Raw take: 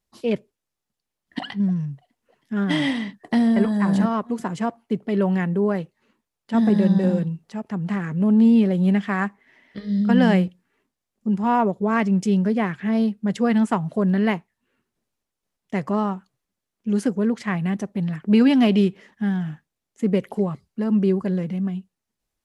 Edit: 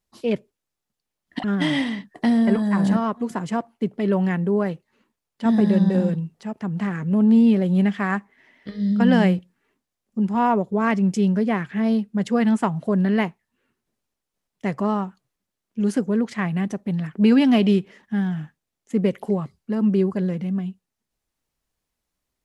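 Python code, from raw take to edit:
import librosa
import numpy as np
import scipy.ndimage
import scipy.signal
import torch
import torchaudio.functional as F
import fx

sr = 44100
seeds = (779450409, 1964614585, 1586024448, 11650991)

y = fx.edit(x, sr, fx.cut(start_s=1.44, length_s=1.09), tone=tone)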